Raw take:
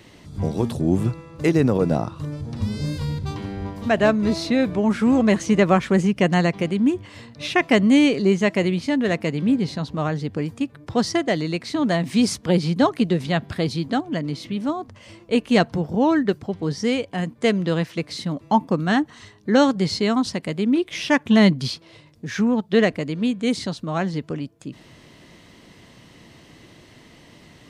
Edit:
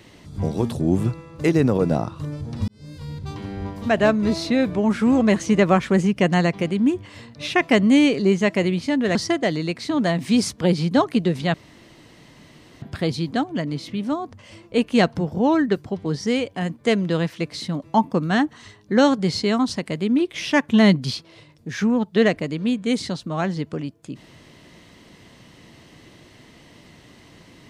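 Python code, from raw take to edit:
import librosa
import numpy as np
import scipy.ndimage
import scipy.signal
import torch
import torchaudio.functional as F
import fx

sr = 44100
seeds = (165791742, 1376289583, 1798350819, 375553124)

y = fx.edit(x, sr, fx.fade_in_span(start_s=2.68, length_s=0.93),
    fx.cut(start_s=9.15, length_s=1.85),
    fx.insert_room_tone(at_s=13.39, length_s=1.28), tone=tone)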